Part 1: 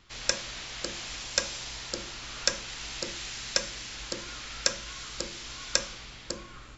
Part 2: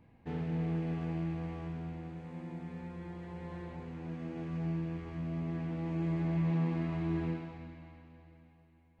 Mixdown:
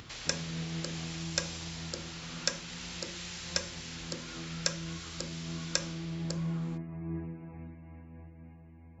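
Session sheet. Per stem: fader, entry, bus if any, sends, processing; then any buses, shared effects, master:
−5.0 dB, 0.00 s, no send, no processing
−5.5 dB, 0.00 s, no send, spectral peaks only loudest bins 64; low-shelf EQ 330 Hz +7 dB; amplitude modulation by smooth noise, depth 65%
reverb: not used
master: upward compression, threshold −38 dBFS; high-pass filter 47 Hz

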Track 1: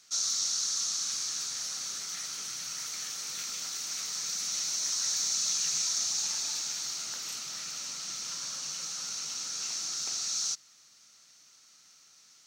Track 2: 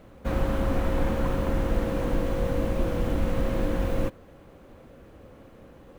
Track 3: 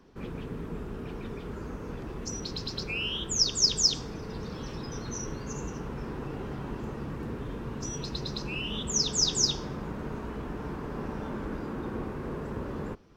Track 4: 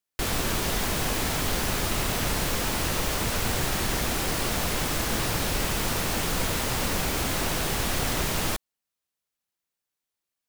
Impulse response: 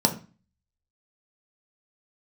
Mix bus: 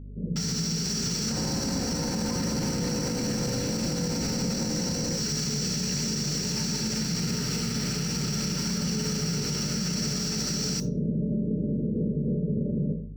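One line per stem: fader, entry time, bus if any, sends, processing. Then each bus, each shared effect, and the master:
+1.5 dB, 0.25 s, bus A, send −22 dB, log-companded quantiser 2 bits
+0.5 dB, 1.05 s, bus A, send −21 dB, no processing
−5.0 dB, 0.00 s, bus A, send −6.5 dB, Chebyshev low-pass with heavy ripple 620 Hz, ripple 9 dB
muted
bus A: 0.0 dB, elliptic band-pass filter 580–3,400 Hz; downward compressor 3 to 1, threshold −45 dBFS, peak gain reduction 11.5 dB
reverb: on, RT60 0.35 s, pre-delay 3 ms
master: automatic gain control gain up to 5 dB; mains hum 50 Hz, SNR 17 dB; brickwall limiter −20 dBFS, peak gain reduction 10.5 dB

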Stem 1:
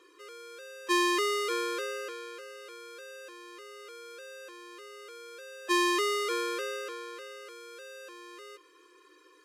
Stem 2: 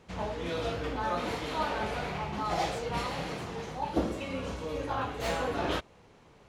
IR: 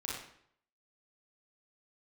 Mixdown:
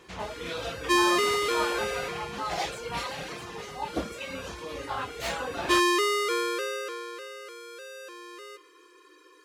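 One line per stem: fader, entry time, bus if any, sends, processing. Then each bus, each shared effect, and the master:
+3.0 dB, 0.00 s, send −20 dB, no processing
+0.5 dB, 0.00 s, no send, reverb reduction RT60 0.79 s; tilt shelving filter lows −4.5 dB, about 880 Hz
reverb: on, RT60 0.65 s, pre-delay 30 ms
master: no processing

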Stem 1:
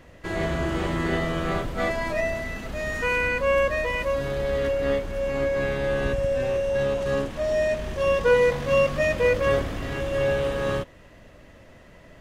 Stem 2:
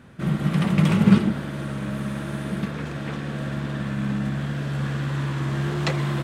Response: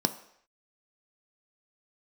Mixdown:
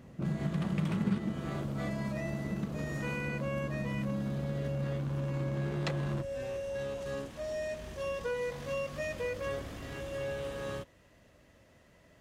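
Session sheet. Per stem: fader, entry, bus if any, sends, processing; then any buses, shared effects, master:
−12.0 dB, 0.00 s, no send, high-pass filter 50 Hz; bass and treble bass +1 dB, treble +6 dB
−3.5 dB, 0.00 s, no send, adaptive Wiener filter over 25 samples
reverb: not used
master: downward compressor 2.5 to 1, threshold −33 dBFS, peak gain reduction 13.5 dB

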